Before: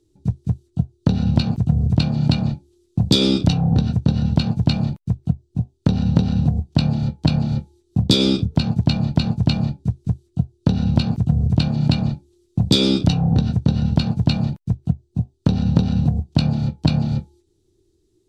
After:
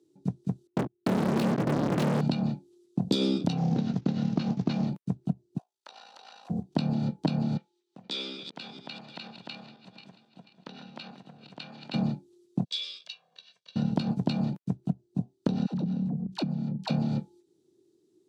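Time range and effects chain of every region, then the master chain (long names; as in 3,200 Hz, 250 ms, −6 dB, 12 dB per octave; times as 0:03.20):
0:00.67–0:02.21: high-frequency loss of the air 330 metres + leveller curve on the samples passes 5 + hard clipping −16.5 dBFS
0:03.57–0:04.87: variable-slope delta modulation 32 kbit/s + high-pass filter 100 Hz
0:05.58–0:06.50: high-pass filter 820 Hz 24 dB per octave + downward compressor 2.5 to 1, threshold −39 dBFS + amplitude modulation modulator 55 Hz, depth 50%
0:07.57–0:11.94: feedback delay that plays each chunk backwards 244 ms, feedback 59%, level −13 dB + downward compressor 3 to 1, threshold −19 dBFS + resonant band-pass 2,400 Hz, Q 0.97
0:12.64–0:13.76: four-pole ladder band-pass 3,600 Hz, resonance 25% + comb filter 1.8 ms, depth 94%
0:15.66–0:16.90: parametric band 180 Hz +10 dB 0.75 octaves + all-pass dispersion lows, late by 77 ms, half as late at 540 Hz + downward compressor 8 to 1, threshold −23 dBFS
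whole clip: high-pass filter 170 Hz 24 dB per octave; tilt shelving filter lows +3 dB, about 1,400 Hz; downward compressor, threshold −19 dBFS; level −3.5 dB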